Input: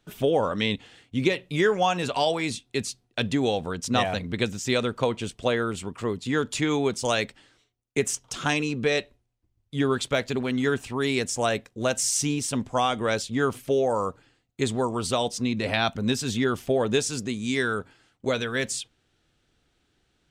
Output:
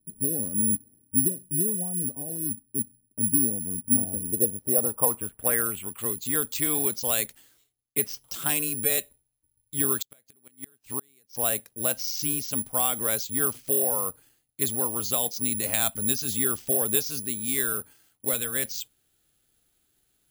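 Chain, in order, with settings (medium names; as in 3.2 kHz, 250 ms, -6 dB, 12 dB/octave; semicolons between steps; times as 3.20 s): low-pass sweep 240 Hz -> 5.7 kHz, 3.94–6.38 s; careless resampling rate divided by 4×, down filtered, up zero stuff; 9.96–11.35 s: inverted gate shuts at -4 dBFS, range -35 dB; trim -7.5 dB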